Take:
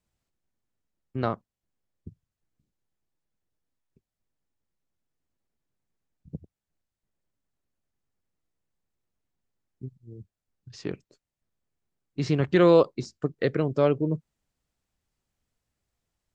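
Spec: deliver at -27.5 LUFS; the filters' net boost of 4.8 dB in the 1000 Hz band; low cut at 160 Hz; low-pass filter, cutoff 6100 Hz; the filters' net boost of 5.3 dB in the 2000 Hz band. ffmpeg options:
-af "highpass=160,lowpass=6.1k,equalizer=f=1k:t=o:g=4.5,equalizer=f=2k:t=o:g=5,volume=-3.5dB"

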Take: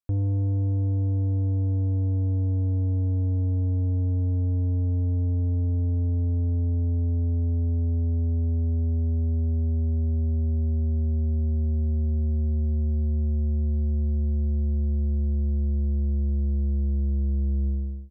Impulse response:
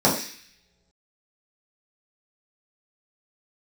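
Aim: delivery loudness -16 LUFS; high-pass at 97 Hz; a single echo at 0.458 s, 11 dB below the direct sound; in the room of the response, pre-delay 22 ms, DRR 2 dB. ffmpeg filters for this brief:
-filter_complex "[0:a]highpass=97,aecho=1:1:458:0.282,asplit=2[a][b];[1:a]atrim=start_sample=2205,adelay=22[c];[b][c]afir=irnorm=-1:irlink=0,volume=-21dB[d];[a][d]amix=inputs=2:normalize=0,volume=10dB"

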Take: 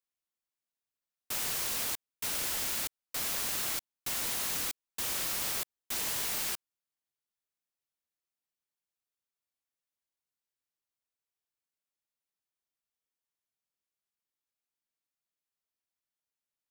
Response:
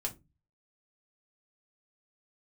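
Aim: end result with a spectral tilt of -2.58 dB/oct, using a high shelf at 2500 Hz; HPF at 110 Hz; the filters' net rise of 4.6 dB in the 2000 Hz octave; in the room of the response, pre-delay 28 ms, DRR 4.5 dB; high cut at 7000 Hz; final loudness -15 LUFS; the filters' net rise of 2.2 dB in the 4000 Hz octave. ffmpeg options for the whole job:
-filter_complex "[0:a]highpass=110,lowpass=7k,equalizer=f=2k:t=o:g=7.5,highshelf=f=2.5k:g=-8.5,equalizer=f=4k:t=o:g=8.5,asplit=2[a][b];[1:a]atrim=start_sample=2205,adelay=28[c];[b][c]afir=irnorm=-1:irlink=0,volume=-5.5dB[d];[a][d]amix=inputs=2:normalize=0,volume=19.5dB"

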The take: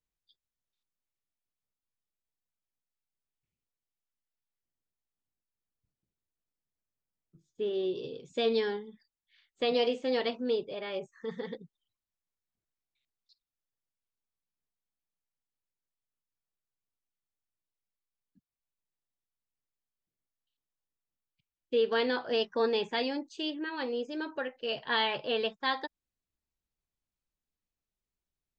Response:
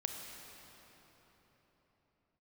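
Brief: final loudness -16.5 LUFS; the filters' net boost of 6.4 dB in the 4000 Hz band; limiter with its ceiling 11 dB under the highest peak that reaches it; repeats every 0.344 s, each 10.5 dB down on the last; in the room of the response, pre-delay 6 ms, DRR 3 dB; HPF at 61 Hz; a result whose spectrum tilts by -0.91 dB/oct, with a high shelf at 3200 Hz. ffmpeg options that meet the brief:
-filter_complex "[0:a]highpass=61,highshelf=f=3.2k:g=5,equalizer=f=4k:t=o:g=5,alimiter=limit=-23.5dB:level=0:latency=1,aecho=1:1:344|688|1032:0.299|0.0896|0.0269,asplit=2[a][b];[1:a]atrim=start_sample=2205,adelay=6[c];[b][c]afir=irnorm=-1:irlink=0,volume=-3.5dB[d];[a][d]amix=inputs=2:normalize=0,volume=16.5dB"

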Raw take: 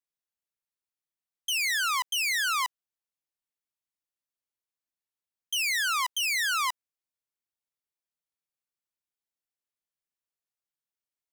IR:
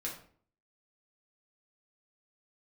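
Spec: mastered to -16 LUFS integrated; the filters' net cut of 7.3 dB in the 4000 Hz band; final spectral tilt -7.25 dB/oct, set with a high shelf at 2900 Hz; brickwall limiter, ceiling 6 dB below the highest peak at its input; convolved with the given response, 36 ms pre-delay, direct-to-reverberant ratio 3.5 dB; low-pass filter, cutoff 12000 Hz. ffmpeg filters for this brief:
-filter_complex "[0:a]lowpass=12k,highshelf=f=2.9k:g=-5.5,equalizer=f=4k:t=o:g=-6,alimiter=level_in=5.5dB:limit=-24dB:level=0:latency=1,volume=-5.5dB,asplit=2[a][b];[1:a]atrim=start_sample=2205,adelay=36[c];[b][c]afir=irnorm=-1:irlink=0,volume=-4.5dB[d];[a][d]amix=inputs=2:normalize=0,volume=17dB"

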